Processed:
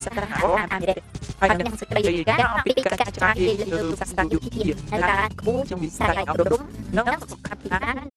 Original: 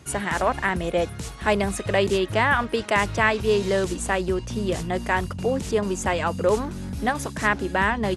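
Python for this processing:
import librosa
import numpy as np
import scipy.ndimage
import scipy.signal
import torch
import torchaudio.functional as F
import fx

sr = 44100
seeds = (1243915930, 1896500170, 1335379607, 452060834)

y = fx.transient(x, sr, attack_db=6, sustain_db=-8)
y = fx.granulator(y, sr, seeds[0], grain_ms=100.0, per_s=20.0, spray_ms=100.0, spread_st=3)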